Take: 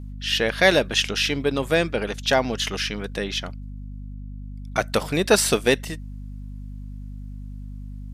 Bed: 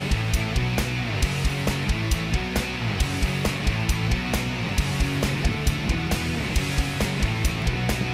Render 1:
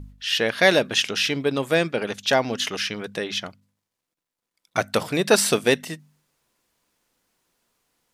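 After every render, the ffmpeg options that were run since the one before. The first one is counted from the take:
-af "bandreject=f=50:t=h:w=4,bandreject=f=100:t=h:w=4,bandreject=f=150:t=h:w=4,bandreject=f=200:t=h:w=4,bandreject=f=250:t=h:w=4"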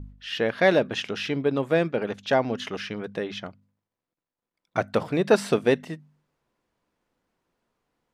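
-af "lowpass=f=1.1k:p=1"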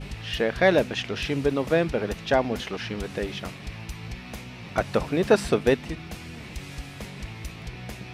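-filter_complex "[1:a]volume=-13.5dB[a];[0:a][a]amix=inputs=2:normalize=0"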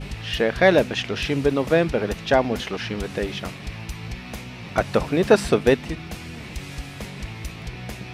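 -af "volume=3.5dB"

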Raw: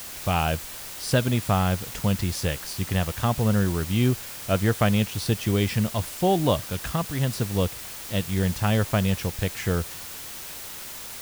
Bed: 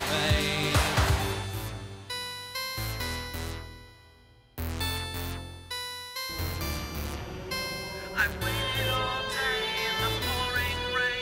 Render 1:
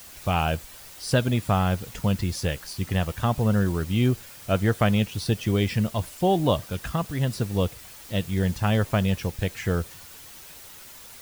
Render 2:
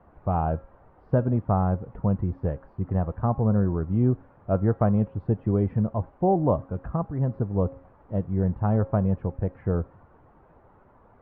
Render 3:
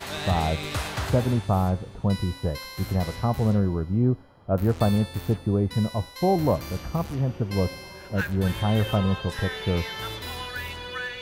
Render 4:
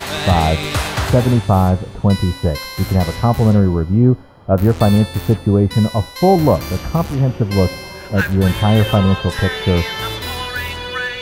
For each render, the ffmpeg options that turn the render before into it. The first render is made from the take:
-af "afftdn=nr=8:nf=-38"
-af "lowpass=f=1.1k:w=0.5412,lowpass=f=1.1k:w=1.3066,bandreject=f=271.1:t=h:w=4,bandreject=f=542.2:t=h:w=4,bandreject=f=813.3:t=h:w=4,bandreject=f=1.0844k:t=h:w=4,bandreject=f=1.3555k:t=h:w=4,bandreject=f=1.6266k:t=h:w=4,bandreject=f=1.8977k:t=h:w=4,bandreject=f=2.1688k:t=h:w=4,bandreject=f=2.4399k:t=h:w=4,bandreject=f=2.711k:t=h:w=4,bandreject=f=2.9821k:t=h:w=4,bandreject=f=3.2532k:t=h:w=4,bandreject=f=3.5243k:t=h:w=4,bandreject=f=3.7954k:t=h:w=4,bandreject=f=4.0665k:t=h:w=4,bandreject=f=4.3376k:t=h:w=4,bandreject=f=4.6087k:t=h:w=4,bandreject=f=4.8798k:t=h:w=4,bandreject=f=5.1509k:t=h:w=4,bandreject=f=5.422k:t=h:w=4,bandreject=f=5.6931k:t=h:w=4,bandreject=f=5.9642k:t=h:w=4,bandreject=f=6.2353k:t=h:w=4,bandreject=f=6.5064k:t=h:w=4,bandreject=f=6.7775k:t=h:w=4,bandreject=f=7.0486k:t=h:w=4,bandreject=f=7.3197k:t=h:w=4,bandreject=f=7.5908k:t=h:w=4,bandreject=f=7.8619k:t=h:w=4,bandreject=f=8.133k:t=h:w=4,bandreject=f=8.4041k:t=h:w=4,bandreject=f=8.6752k:t=h:w=4,bandreject=f=8.9463k:t=h:w=4,bandreject=f=9.2174k:t=h:w=4,bandreject=f=9.4885k:t=h:w=4"
-filter_complex "[1:a]volume=-5dB[a];[0:a][a]amix=inputs=2:normalize=0"
-af "volume=10dB,alimiter=limit=-1dB:level=0:latency=1"

